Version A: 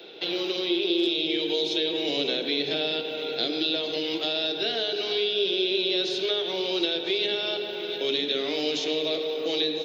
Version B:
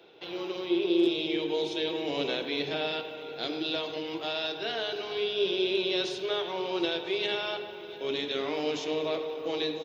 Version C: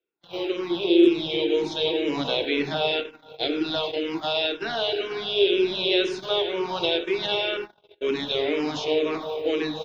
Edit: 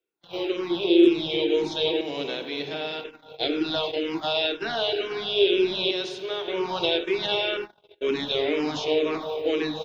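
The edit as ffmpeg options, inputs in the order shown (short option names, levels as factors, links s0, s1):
-filter_complex "[1:a]asplit=2[s0][s1];[2:a]asplit=3[s2][s3][s4];[s2]atrim=end=2.012[s5];[s0]atrim=start=2.008:end=3.042[s6];[s3]atrim=start=3.038:end=5.912[s7];[s1]atrim=start=5.908:end=6.482[s8];[s4]atrim=start=6.478[s9];[s5][s6]acrossfade=d=0.004:c1=hsin:c2=hsin[s10];[s10][s7]acrossfade=d=0.004:c1=hsin:c2=hsin[s11];[s11][s8]acrossfade=d=0.004:c1=hsin:c2=hsin[s12];[s12][s9]acrossfade=d=0.004:c1=hsin:c2=hsin"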